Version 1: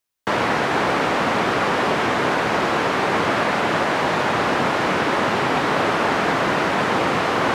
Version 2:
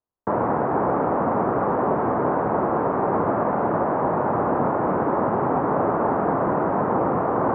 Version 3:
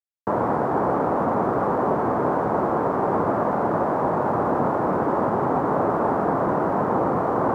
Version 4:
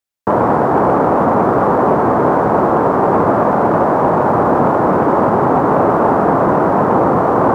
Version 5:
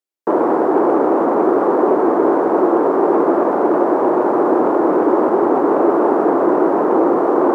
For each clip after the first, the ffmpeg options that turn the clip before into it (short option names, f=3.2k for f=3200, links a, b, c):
-af "lowpass=f=1.1k:w=0.5412,lowpass=f=1.1k:w=1.3066"
-af "aeval=exprs='sgn(val(0))*max(abs(val(0))-0.00237,0)':c=same"
-af "acontrast=76,volume=3dB"
-af "highpass=f=340:t=q:w=3.6,volume=-6.5dB"